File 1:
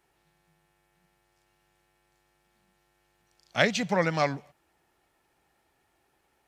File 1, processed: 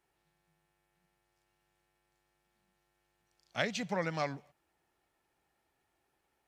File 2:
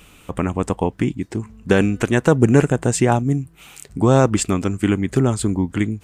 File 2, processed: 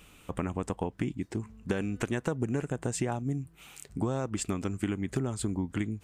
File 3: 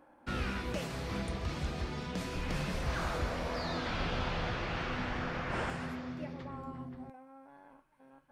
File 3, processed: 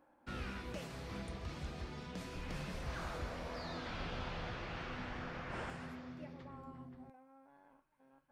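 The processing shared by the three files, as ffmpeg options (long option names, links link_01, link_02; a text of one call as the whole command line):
ffmpeg -i in.wav -af "acompressor=threshold=-18dB:ratio=10,volume=-8dB" out.wav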